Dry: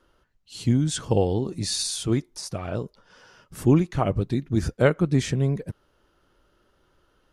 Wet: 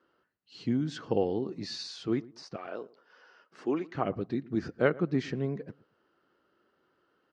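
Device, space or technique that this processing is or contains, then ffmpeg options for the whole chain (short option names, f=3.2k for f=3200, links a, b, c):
kitchen radio: -filter_complex "[0:a]highpass=220,equalizer=f=590:t=q:w=4:g=-4,equalizer=f=920:t=q:w=4:g=-4,equalizer=f=2.4k:t=q:w=4:g=-4,equalizer=f=3.5k:t=q:w=4:g=-9,lowpass=f=4.3k:w=0.5412,lowpass=f=4.3k:w=1.3066,asettb=1/sr,asplit=3[a][b][c];[a]atrim=end=2.564[d];[b]atrim=start=2.56:end=3.94,asetpts=PTS-STARTPTS,afade=t=in:d=0.004:c=qsin,afade=t=out:st=1.376:d=0.004:c=qsin,highpass=400[e];[c]atrim=start=3.936[f];[d][e]acrossfade=d=0.004:c1=hsin:c2=qsin[g];[g][f]acrossfade=d=0.004:c1=qsin:c2=hsin,asplit=2[h][i];[i]adelay=114,lowpass=f=1.1k:p=1,volume=-20dB,asplit=2[j][k];[k]adelay=114,lowpass=f=1.1k:p=1,volume=0.25[l];[h][j][l]amix=inputs=3:normalize=0,volume=-3.5dB"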